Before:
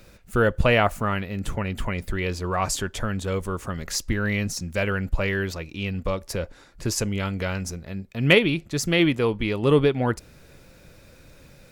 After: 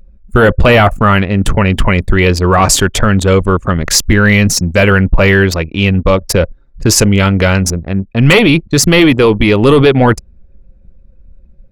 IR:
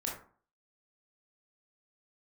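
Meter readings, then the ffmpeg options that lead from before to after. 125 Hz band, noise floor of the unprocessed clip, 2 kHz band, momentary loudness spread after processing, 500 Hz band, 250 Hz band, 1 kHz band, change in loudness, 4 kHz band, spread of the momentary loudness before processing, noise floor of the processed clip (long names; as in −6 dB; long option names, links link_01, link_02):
+15.5 dB, −51 dBFS, +13.5 dB, 6 LU, +13.5 dB, +15.0 dB, +14.5 dB, +14.5 dB, +14.0 dB, 12 LU, −43 dBFS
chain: -af "anlmdn=3.98,apsyclip=20dB,volume=-2dB"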